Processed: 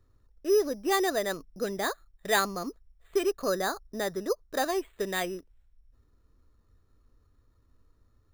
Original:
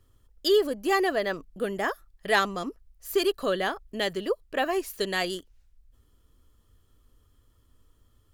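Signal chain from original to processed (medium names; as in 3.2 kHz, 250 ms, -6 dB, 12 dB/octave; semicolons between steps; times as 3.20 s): 3.48–4.62 s: resonant high shelf 2 kHz -7 dB, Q 1.5; careless resampling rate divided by 8×, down filtered, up hold; trim -2 dB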